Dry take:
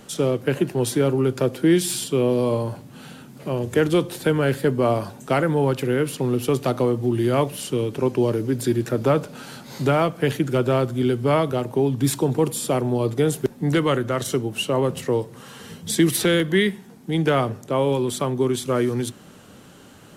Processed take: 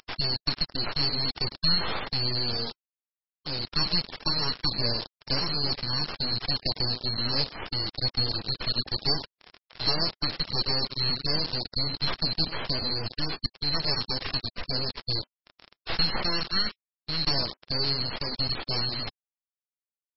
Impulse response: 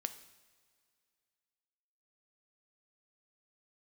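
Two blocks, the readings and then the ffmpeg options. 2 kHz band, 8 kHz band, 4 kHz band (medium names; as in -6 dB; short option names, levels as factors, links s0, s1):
-6.5 dB, under -40 dB, +8.0 dB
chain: -filter_complex "[0:a]afftfilt=real='real(if(lt(b,736),b+184*(1-2*mod(floor(b/184),2)),b),0)':imag='imag(if(lt(b,736),b+184*(1-2*mod(floor(b/184),2)),b),0)':win_size=2048:overlap=0.75,acrossover=split=150|5900[s0][s1][s2];[s2]acompressor=mode=upward:threshold=0.02:ratio=2.5[s3];[s0][s1][s3]amix=inputs=3:normalize=0,equalizer=f=250:t=o:w=1:g=-8,equalizer=f=2000:t=o:w=1:g=-4,equalizer=f=4000:t=o:w=1:g=-9,equalizer=f=8000:t=o:w=1:g=-4,asplit=2[s4][s5];[s5]acompressor=threshold=0.00708:ratio=8,volume=0.841[s6];[s4][s6]amix=inputs=2:normalize=0,asplit=2[s7][s8];[s8]adelay=103,lowpass=f=3400:p=1,volume=0.355,asplit=2[s9][s10];[s10]adelay=103,lowpass=f=3400:p=1,volume=0.19,asplit=2[s11][s12];[s12]adelay=103,lowpass=f=3400:p=1,volume=0.19[s13];[s7][s9][s11][s13]amix=inputs=4:normalize=0,acrusher=bits=4:mix=0:aa=0.000001,aeval=exprs='0.282*(cos(1*acos(clip(val(0)/0.282,-1,1)))-cos(1*PI/2))+0.00282*(cos(2*acos(clip(val(0)/0.282,-1,1)))-cos(2*PI/2))+0.0891*(cos(6*acos(clip(val(0)/0.282,-1,1)))-cos(6*PI/2))+0.00631*(cos(7*acos(clip(val(0)/0.282,-1,1)))-cos(7*PI/2))+0.00891*(cos(8*acos(clip(val(0)/0.282,-1,1)))-cos(8*PI/2))':c=same,aeval=exprs='sgn(val(0))*max(abs(val(0))-0.00224,0)':c=same" -ar 22050 -c:a libmp3lame -b:a 16k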